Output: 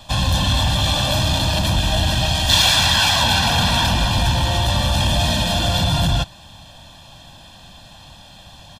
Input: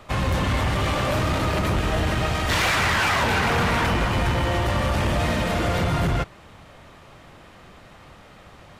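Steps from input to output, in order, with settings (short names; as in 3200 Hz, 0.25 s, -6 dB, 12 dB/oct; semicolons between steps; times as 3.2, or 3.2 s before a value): resonant high shelf 2700 Hz +7 dB, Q 3; comb 1.2 ms, depth 88%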